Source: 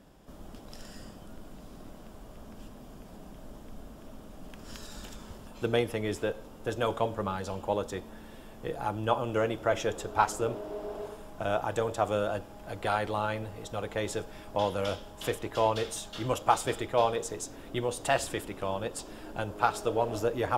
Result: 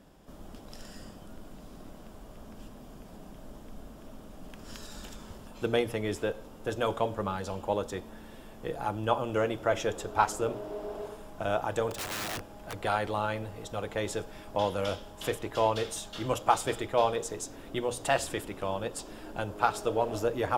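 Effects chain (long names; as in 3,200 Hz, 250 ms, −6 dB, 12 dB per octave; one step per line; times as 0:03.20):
mains-hum notches 60/120 Hz
0:11.90–0:12.80: wrap-around overflow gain 30 dB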